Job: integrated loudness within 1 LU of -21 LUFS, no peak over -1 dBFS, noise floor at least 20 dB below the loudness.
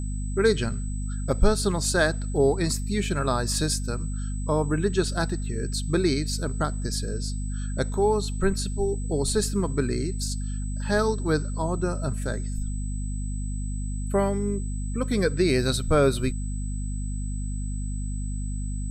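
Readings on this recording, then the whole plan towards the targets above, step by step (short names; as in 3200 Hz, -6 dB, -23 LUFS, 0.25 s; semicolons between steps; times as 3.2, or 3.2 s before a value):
hum 50 Hz; harmonics up to 250 Hz; hum level -27 dBFS; steady tone 8000 Hz; tone level -43 dBFS; loudness -27.0 LUFS; peak -6.0 dBFS; loudness target -21.0 LUFS
-> notches 50/100/150/200/250 Hz; notch 8000 Hz, Q 30; gain +6 dB; limiter -1 dBFS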